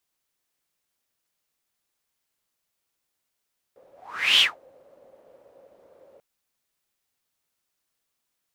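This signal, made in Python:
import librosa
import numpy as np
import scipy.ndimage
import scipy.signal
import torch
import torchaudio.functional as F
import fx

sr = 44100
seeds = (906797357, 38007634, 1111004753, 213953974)

y = fx.whoosh(sr, seeds[0], length_s=2.44, peak_s=0.64, rise_s=0.5, fall_s=0.19, ends_hz=540.0, peak_hz=3200.0, q=8.4, swell_db=38)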